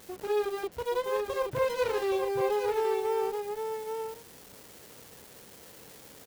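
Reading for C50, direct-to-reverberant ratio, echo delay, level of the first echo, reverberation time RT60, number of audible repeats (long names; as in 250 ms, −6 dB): no reverb audible, no reverb audible, 824 ms, −5.5 dB, no reverb audible, 1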